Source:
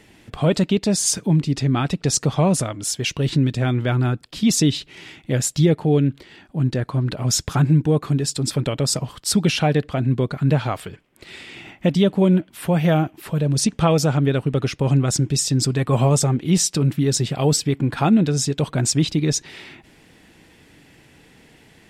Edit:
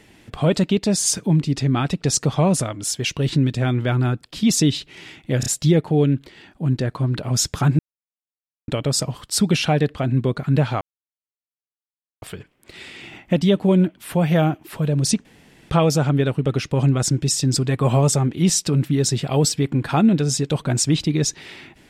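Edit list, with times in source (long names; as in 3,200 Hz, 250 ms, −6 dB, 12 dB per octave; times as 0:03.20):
0:05.40: stutter 0.03 s, 3 plays
0:07.73–0:08.62: silence
0:10.75: splice in silence 1.41 s
0:13.78: splice in room tone 0.45 s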